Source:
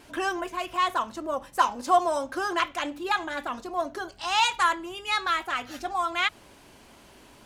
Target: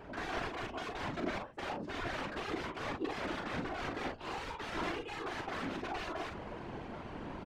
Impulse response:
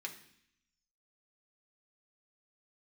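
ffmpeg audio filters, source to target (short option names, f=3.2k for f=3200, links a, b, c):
-af "areverse,acompressor=threshold=-39dB:ratio=5,areverse,aeval=exprs='(mod(94.4*val(0)+1,2)-1)/94.4':c=same,aecho=1:1:40|53:0.631|0.266,adynamicsmooth=sensitivity=4.5:basefreq=1.6k,afftfilt=real='hypot(re,im)*cos(2*PI*random(0))':imag='hypot(re,im)*sin(2*PI*random(1))':win_size=512:overlap=0.75,volume=15dB"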